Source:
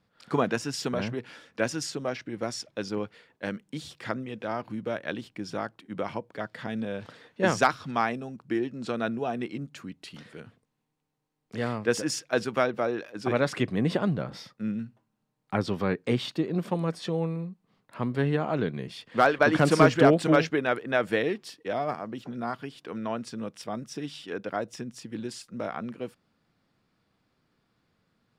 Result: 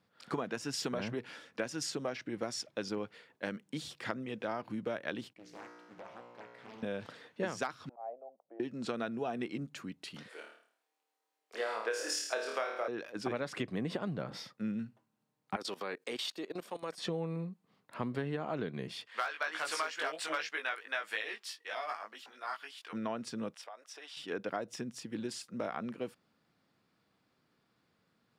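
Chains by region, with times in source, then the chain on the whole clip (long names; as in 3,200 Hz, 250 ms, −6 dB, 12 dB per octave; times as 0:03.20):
0:05.33–0:06.83: tuned comb filter 60 Hz, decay 1.7 s, mix 90% + highs frequency-modulated by the lows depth 0.74 ms
0:07.89–0:08.60: flat-topped band-pass 640 Hz, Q 2.9 + volume swells 200 ms
0:10.28–0:12.88: high-pass filter 430 Hz 24 dB per octave + flutter between parallel walls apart 4.6 metres, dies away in 0.52 s
0:15.56–0:16.98: high-pass filter 410 Hz + high-shelf EQ 3,900 Hz +10 dB + output level in coarse steps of 18 dB
0:19.06–0:22.93: high-pass filter 1,200 Hz + double-tracking delay 19 ms −3 dB
0:23.54–0:24.17: high-pass filter 620 Hz 24 dB per octave + high-shelf EQ 4,600 Hz −6.5 dB + downward compressor, threshold −42 dBFS
whole clip: high-pass filter 160 Hz 6 dB per octave; downward compressor 12 to 1, threshold −30 dBFS; level −1.5 dB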